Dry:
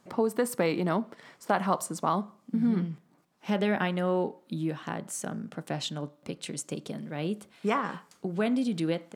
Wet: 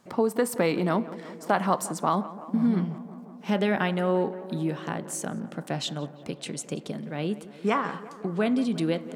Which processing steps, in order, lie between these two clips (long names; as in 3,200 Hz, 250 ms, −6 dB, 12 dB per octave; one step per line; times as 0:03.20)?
0:06.34–0:08.76: high-shelf EQ 10,000 Hz −5.5 dB
tape delay 174 ms, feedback 85%, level −15 dB, low-pass 1,900 Hz
level +2.5 dB